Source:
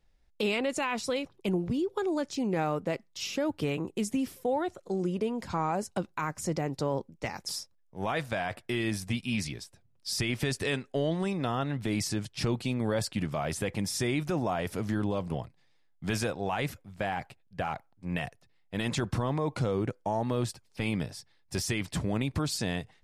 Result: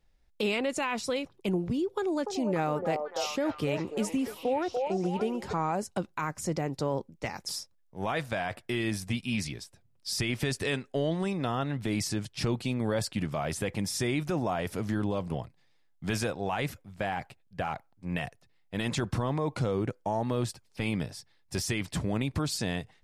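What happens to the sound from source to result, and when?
1.97–5.53 delay with a stepping band-pass 0.292 s, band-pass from 630 Hz, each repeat 0.7 oct, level -1 dB

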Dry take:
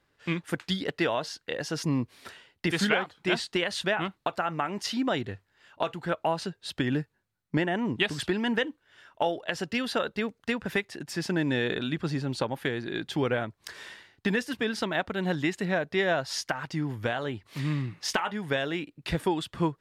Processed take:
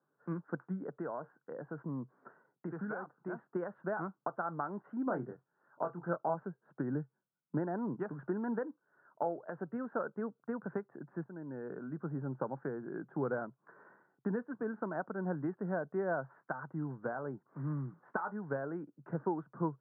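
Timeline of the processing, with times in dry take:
0.78–3.48 compressor 2:1, threshold -30 dBFS
5.04–6.34 doubler 23 ms -6 dB
11.24–12.22 fade in, from -15.5 dB
whole clip: Chebyshev band-pass 130–1500 Hz, order 5; gain -7 dB

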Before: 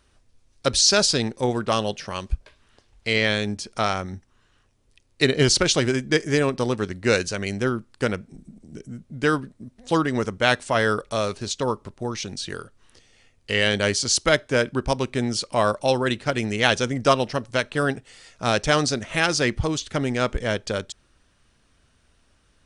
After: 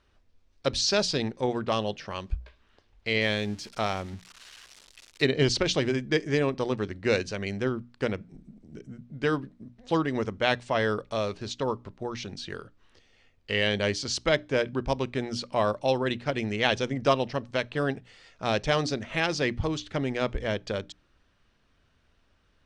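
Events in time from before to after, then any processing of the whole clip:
3.21–5.22 switching spikes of -26 dBFS
whole clip: LPF 4300 Hz 12 dB/oct; notches 60/120/180/240/300 Hz; dynamic EQ 1400 Hz, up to -6 dB, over -38 dBFS, Q 3.4; gain -4 dB

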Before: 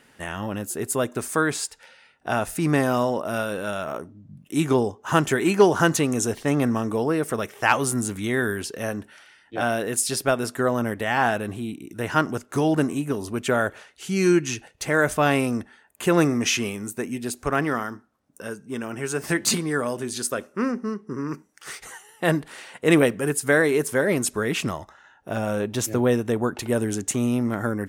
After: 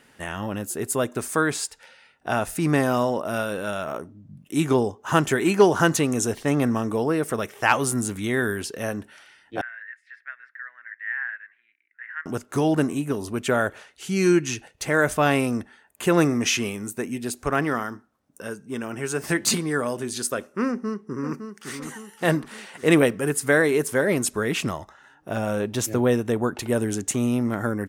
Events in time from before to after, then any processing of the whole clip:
9.61–12.26 Butterworth band-pass 1800 Hz, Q 4.3
20.67–21.79 echo throw 0.56 s, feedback 55%, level -8 dB

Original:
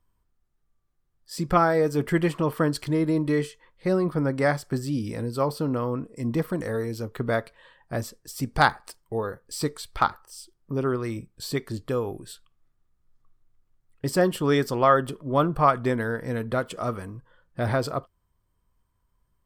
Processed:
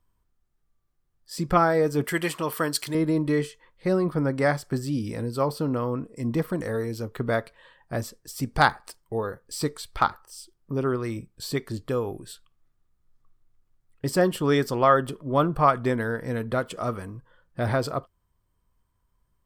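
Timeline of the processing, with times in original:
2.04–2.95 tilt +3 dB/oct

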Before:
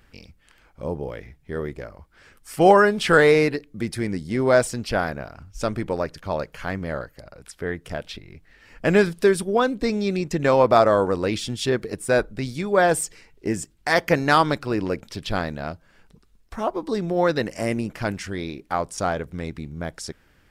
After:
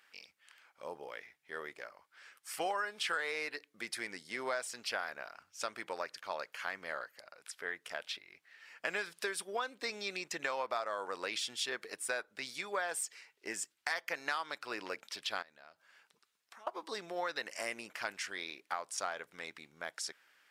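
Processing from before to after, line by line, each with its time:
15.42–16.67 compressor 20:1, threshold -40 dBFS
whole clip: Bessel high-pass 1600 Hz, order 2; tilt -1.5 dB/oct; compressor 6:1, threshold -33 dBFS

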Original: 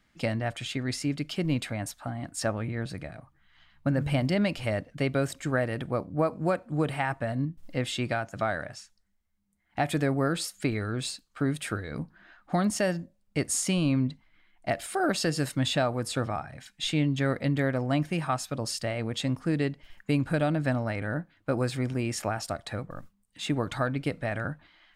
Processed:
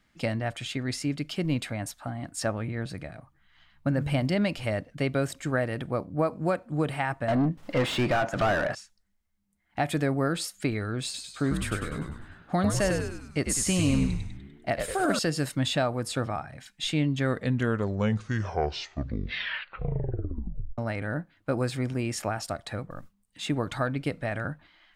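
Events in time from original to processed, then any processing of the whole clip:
7.28–8.75 overdrive pedal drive 29 dB, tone 1200 Hz, clips at -15.5 dBFS
11.04–15.19 frequency-shifting echo 99 ms, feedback 52%, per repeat -82 Hz, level -4.5 dB
17.15 tape stop 3.63 s

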